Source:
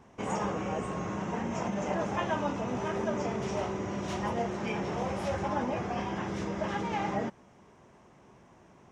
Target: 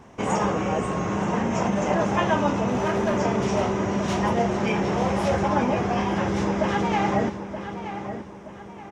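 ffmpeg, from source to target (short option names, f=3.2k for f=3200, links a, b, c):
-filter_complex "[0:a]asplit=2[a][b];[b]adelay=925,lowpass=f=4.3k:p=1,volume=-10dB,asplit=2[c][d];[d]adelay=925,lowpass=f=4.3k:p=1,volume=0.39,asplit=2[e][f];[f]adelay=925,lowpass=f=4.3k:p=1,volume=0.39,asplit=2[g][h];[h]adelay=925,lowpass=f=4.3k:p=1,volume=0.39[i];[a][c][e][g][i]amix=inputs=5:normalize=0,asettb=1/sr,asplit=3[j][k][l];[j]atrim=end=2.684[m];[k]atrim=start=2.68:end=3.2,asetpts=PTS-STARTPTS,afade=t=in:d=0.004:c=qsin,afade=t=out:st=0.516:d=0.004:c=qsin,volume=26.5dB,asoftclip=hard,volume=-26.5dB[n];[l]atrim=start=3.196[o];[m][n]acrossfade=d=0.004:c1=hsin:c2=qsin[p];[p][o]acrossfade=d=0.004:c1=qsin:c2=hsin,volume=8.5dB"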